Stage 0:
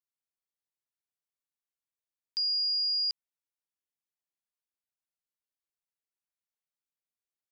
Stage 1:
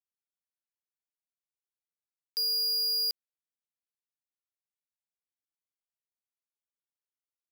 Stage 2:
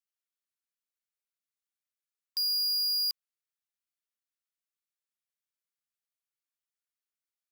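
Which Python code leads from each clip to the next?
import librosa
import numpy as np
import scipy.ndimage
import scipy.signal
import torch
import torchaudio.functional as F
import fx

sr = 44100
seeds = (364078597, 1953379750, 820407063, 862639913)

y1 = fx.leveller(x, sr, passes=5)
y1 = y1 * librosa.db_to_amplitude(-2.0)
y2 = fx.brickwall_highpass(y1, sr, low_hz=1100.0)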